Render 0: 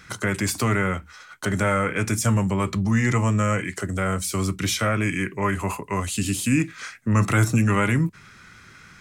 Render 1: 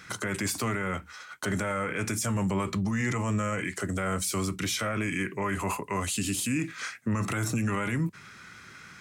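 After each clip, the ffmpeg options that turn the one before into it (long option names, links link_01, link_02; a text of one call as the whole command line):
ffmpeg -i in.wav -af "highpass=frequency=140:poles=1,alimiter=limit=-21dB:level=0:latency=1:release=35" out.wav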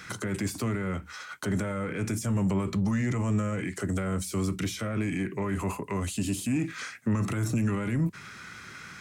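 ffmpeg -i in.wav -filter_complex "[0:a]acrossover=split=440[link_01][link_02];[link_02]acompressor=threshold=-39dB:ratio=6[link_03];[link_01][link_03]amix=inputs=2:normalize=0,asplit=2[link_04][link_05];[link_05]asoftclip=type=tanh:threshold=-31dB,volume=-5dB[link_06];[link_04][link_06]amix=inputs=2:normalize=0" out.wav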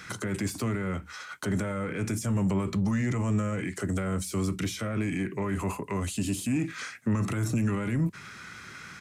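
ffmpeg -i in.wav -af "aresample=32000,aresample=44100" out.wav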